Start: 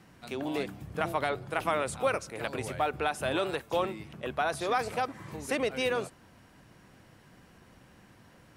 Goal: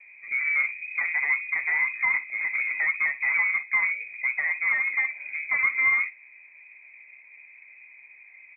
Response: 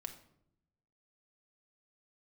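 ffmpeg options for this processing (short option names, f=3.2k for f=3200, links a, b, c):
-af "lowshelf=f=780:t=q:w=3:g=13,aresample=16000,asoftclip=type=tanh:threshold=-12.5dB,aresample=44100,aecho=1:1:16|60:0.376|0.168,lowpass=f=2.2k:t=q:w=0.5098,lowpass=f=2.2k:t=q:w=0.6013,lowpass=f=2.2k:t=q:w=0.9,lowpass=f=2.2k:t=q:w=2.563,afreqshift=-2600,volume=-7.5dB"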